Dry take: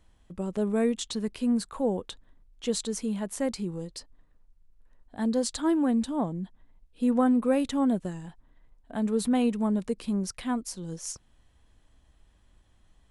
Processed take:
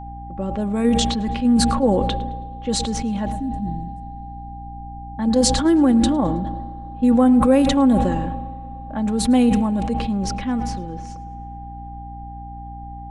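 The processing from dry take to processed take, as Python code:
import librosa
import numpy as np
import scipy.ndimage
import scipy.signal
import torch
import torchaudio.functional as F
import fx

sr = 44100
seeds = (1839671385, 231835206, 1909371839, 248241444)

p1 = fx.cheby2_bandstop(x, sr, low_hz=560.0, high_hz=4000.0, order=4, stop_db=50, at=(3.32, 5.19))
p2 = fx.env_lowpass(p1, sr, base_hz=1400.0, full_db=-20.5)
p3 = p2 + 0.53 * np.pad(p2, (int(3.6 * sr / 1000.0), 0))[:len(p2)]
p4 = fx.level_steps(p3, sr, step_db=11)
p5 = p3 + (p4 * librosa.db_to_amplitude(2.0))
p6 = fx.rev_spring(p5, sr, rt60_s=3.7, pass_ms=(30, 59), chirp_ms=55, drr_db=18.5)
p7 = p6 + 10.0 ** (-35.0 / 20.0) * np.sin(2.0 * np.pi * 800.0 * np.arange(len(p6)) / sr)
p8 = p7 + fx.echo_feedback(p7, sr, ms=108, feedback_pct=48, wet_db=-20, dry=0)
p9 = fx.add_hum(p8, sr, base_hz=60, snr_db=14)
y = fx.sustainer(p9, sr, db_per_s=30.0)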